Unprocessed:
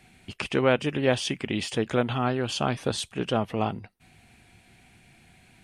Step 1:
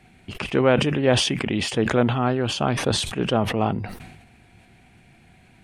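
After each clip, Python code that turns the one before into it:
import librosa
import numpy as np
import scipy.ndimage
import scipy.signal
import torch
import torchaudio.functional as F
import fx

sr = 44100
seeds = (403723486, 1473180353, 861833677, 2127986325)

y = fx.high_shelf(x, sr, hz=2600.0, db=-8.5)
y = fx.sustainer(y, sr, db_per_s=51.0)
y = y * librosa.db_to_amplitude(4.0)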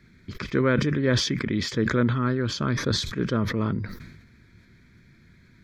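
y = fx.fixed_phaser(x, sr, hz=2800.0, stages=6)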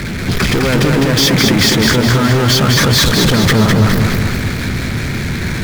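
y = fx.over_compress(x, sr, threshold_db=-28.0, ratio=-1.0)
y = fx.power_curve(y, sr, exponent=0.35)
y = fx.echo_feedback(y, sr, ms=207, feedback_pct=55, wet_db=-3.5)
y = y * librosa.db_to_amplitude(5.5)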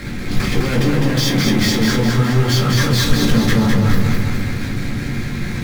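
y = fx.room_shoebox(x, sr, seeds[0], volume_m3=180.0, walls='furnished', distance_m=2.2)
y = y * librosa.db_to_amplitude(-11.5)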